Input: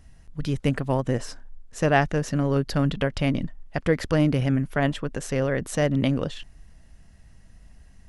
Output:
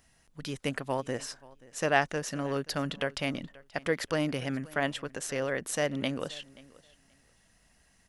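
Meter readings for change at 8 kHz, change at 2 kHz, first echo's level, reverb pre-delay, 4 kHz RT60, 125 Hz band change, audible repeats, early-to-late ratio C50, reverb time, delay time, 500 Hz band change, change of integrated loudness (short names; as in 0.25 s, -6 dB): 0.0 dB, -2.5 dB, -22.0 dB, none, none, -14.0 dB, 1, none, none, 0.53 s, -6.0 dB, -7.5 dB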